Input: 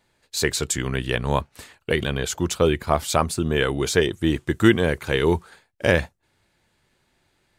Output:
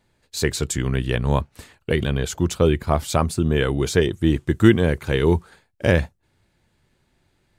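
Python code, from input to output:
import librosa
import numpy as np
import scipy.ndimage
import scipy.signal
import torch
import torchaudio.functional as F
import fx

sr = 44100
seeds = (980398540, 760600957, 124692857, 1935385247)

y = fx.low_shelf(x, sr, hz=330.0, db=8.5)
y = F.gain(torch.from_numpy(y), -2.5).numpy()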